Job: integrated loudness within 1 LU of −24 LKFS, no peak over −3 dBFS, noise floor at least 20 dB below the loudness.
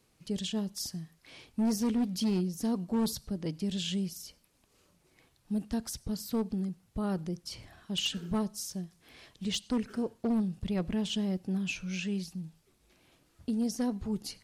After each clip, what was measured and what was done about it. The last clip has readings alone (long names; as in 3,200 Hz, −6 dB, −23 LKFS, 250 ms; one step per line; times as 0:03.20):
share of clipped samples 1.5%; peaks flattened at −24.5 dBFS; integrated loudness −33.5 LKFS; sample peak −24.5 dBFS; target loudness −24.0 LKFS
→ clipped peaks rebuilt −24.5 dBFS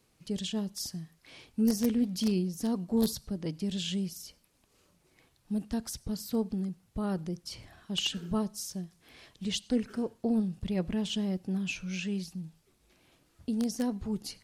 share of clipped samples 0.0%; integrated loudness −33.0 LKFS; sample peak −15.5 dBFS; target loudness −24.0 LKFS
→ level +9 dB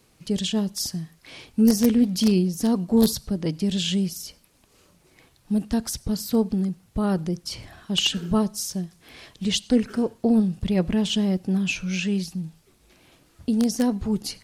integrated loudness −24.0 LKFS; sample peak −6.5 dBFS; background noise floor −60 dBFS